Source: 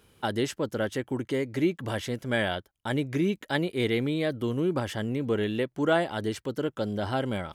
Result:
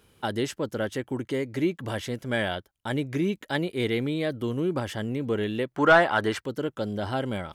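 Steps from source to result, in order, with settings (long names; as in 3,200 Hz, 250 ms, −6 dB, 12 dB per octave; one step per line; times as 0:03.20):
0:05.74–0:06.41: parametric band 1,300 Hz +14 dB 2.2 octaves
soft clipping −8 dBFS, distortion −16 dB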